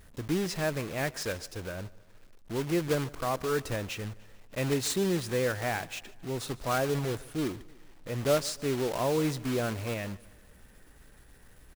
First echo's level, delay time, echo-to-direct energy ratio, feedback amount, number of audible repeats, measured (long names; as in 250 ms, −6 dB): −22.0 dB, 148 ms, −20.5 dB, 51%, 3